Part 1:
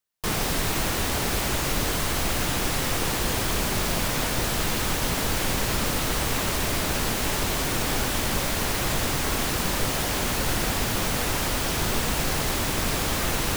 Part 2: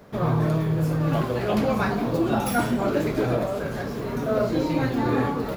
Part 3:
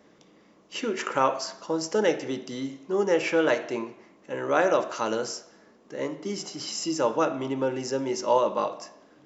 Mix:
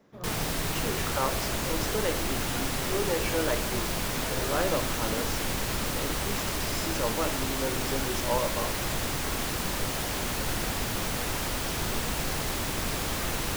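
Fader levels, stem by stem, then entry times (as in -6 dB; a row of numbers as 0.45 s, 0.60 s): -5.0 dB, -17.5 dB, -7.0 dB; 0.00 s, 0.00 s, 0.00 s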